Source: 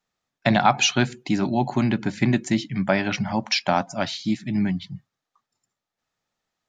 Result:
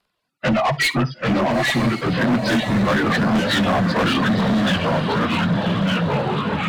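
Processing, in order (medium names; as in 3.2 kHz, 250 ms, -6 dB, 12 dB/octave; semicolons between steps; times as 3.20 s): frequency axis rescaled in octaves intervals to 89%; in parallel at +1 dB: peak limiter -19 dBFS, peak gain reduction 10 dB; on the sum: reverb removal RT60 0.59 s; saturation -19.5 dBFS, distortion -10 dB; 2.13–3.78 s: cabinet simulation 130–5300 Hz, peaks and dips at 240 Hz +8 dB, 420 Hz +5 dB, 1.1 kHz +8 dB, 1.7 kHz +7 dB, 2.4 kHz -9 dB; echo that smears into a reverb 949 ms, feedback 52%, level -6.5 dB; reverb removal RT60 0.57 s; ever faster or slower copies 731 ms, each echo -2 st, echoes 3; hard clipper -20.5 dBFS, distortion -10 dB; on a send at -17.5 dB: reverberation, pre-delay 46 ms; on the sum: trim +5.5 dB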